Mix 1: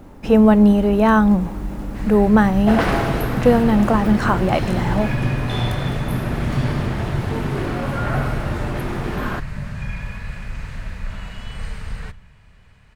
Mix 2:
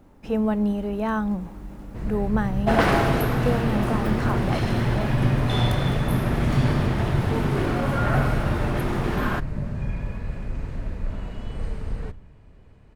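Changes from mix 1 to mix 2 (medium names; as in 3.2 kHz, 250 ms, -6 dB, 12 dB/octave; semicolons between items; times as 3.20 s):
speech -11.0 dB; first sound: add FFT filter 190 Hz 0 dB, 310 Hz +10 dB, 1.7 kHz -10 dB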